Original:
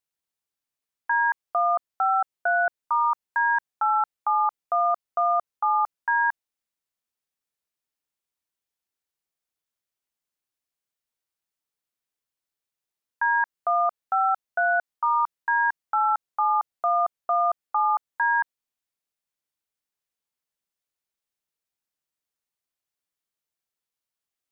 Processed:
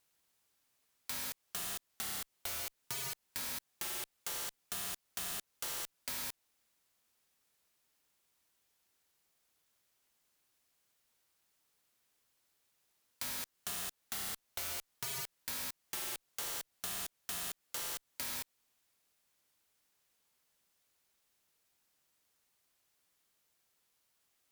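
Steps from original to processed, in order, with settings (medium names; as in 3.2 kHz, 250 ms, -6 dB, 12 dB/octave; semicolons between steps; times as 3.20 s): Chebyshev shaper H 5 -7 dB, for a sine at -15 dBFS; integer overflow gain 28.5 dB; compression, threshold -39 dBFS, peak gain reduction 7 dB; trim +1 dB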